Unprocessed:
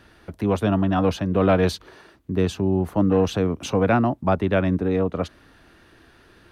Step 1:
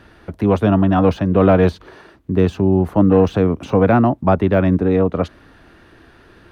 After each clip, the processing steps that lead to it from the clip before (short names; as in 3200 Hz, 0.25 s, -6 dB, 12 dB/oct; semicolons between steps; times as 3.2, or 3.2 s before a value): de-esser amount 100%; high shelf 3300 Hz -8 dB; gain +6.5 dB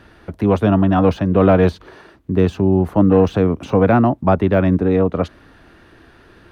nothing audible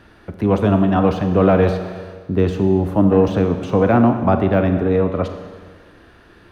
reverb RT60 1.6 s, pre-delay 30 ms, DRR 6.5 dB; gain -1.5 dB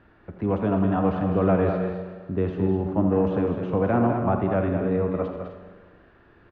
LPF 2200 Hz 12 dB/oct; on a send: tapped delay 83/205/254 ms -10.5/-7.5/-11.5 dB; on the sum: gain -8 dB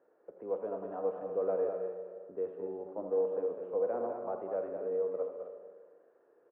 dynamic EQ 450 Hz, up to -5 dB, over -35 dBFS, Q 0.8; ladder band-pass 530 Hz, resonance 70%